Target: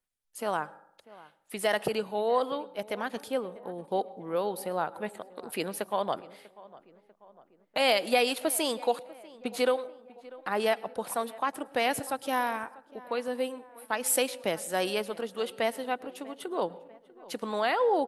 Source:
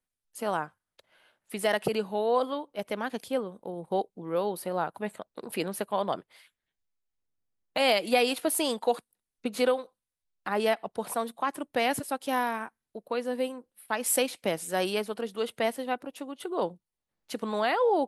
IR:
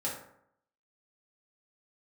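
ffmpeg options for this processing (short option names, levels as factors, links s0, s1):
-filter_complex "[0:a]equalizer=f=180:t=o:w=2:g=-3.5,asplit=2[s0][s1];[s1]adelay=644,lowpass=f=2000:p=1,volume=0.1,asplit=2[s2][s3];[s3]adelay=644,lowpass=f=2000:p=1,volume=0.55,asplit=2[s4][s5];[s5]adelay=644,lowpass=f=2000:p=1,volume=0.55,asplit=2[s6][s7];[s7]adelay=644,lowpass=f=2000:p=1,volume=0.55[s8];[s0][s2][s4][s6][s8]amix=inputs=5:normalize=0,asplit=2[s9][s10];[1:a]atrim=start_sample=2205,adelay=106[s11];[s10][s11]afir=irnorm=-1:irlink=0,volume=0.0596[s12];[s9][s12]amix=inputs=2:normalize=0"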